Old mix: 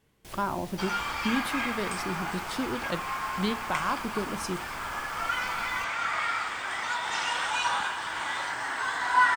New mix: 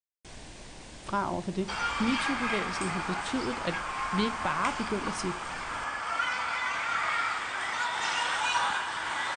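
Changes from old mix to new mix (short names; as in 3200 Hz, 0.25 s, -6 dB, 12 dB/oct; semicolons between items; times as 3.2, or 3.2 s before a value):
speech: entry +0.75 s; second sound: entry +0.90 s; master: add brick-wall FIR low-pass 9600 Hz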